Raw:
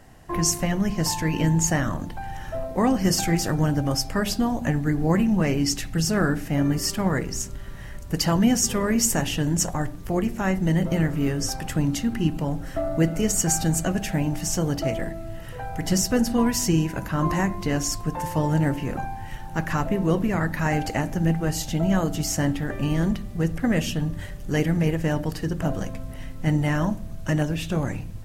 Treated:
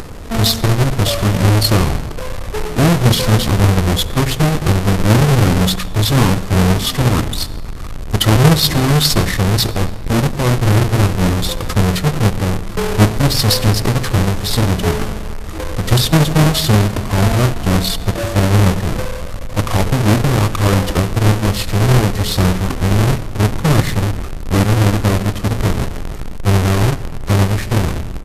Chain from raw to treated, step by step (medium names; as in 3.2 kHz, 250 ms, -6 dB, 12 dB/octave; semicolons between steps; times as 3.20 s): square wave that keeps the level; upward compressor, threshold -25 dBFS; pitch shift -7.5 st; on a send: reverberation RT60 1.8 s, pre-delay 64 ms, DRR 17 dB; on the sum: trim +5.5 dB